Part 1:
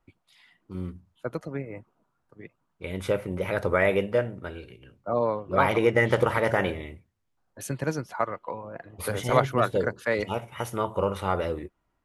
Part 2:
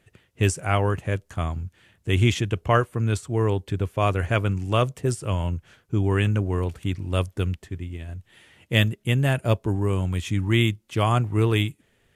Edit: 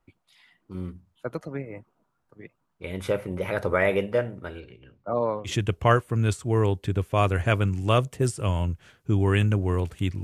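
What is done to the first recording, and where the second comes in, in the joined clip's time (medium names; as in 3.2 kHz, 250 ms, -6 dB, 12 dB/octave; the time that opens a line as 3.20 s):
part 1
4.60–5.54 s: distance through air 110 m
5.49 s: go over to part 2 from 2.33 s, crossfade 0.10 s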